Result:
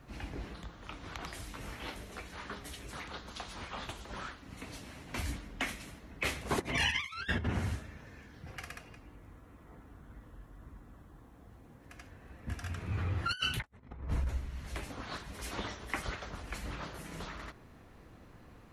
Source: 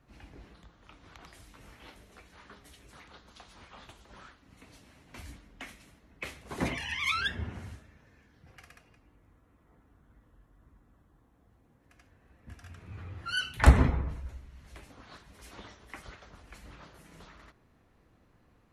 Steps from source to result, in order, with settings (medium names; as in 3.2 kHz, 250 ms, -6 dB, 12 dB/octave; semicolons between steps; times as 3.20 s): compressor with a negative ratio -38 dBFS, ratio -0.5; trim +2.5 dB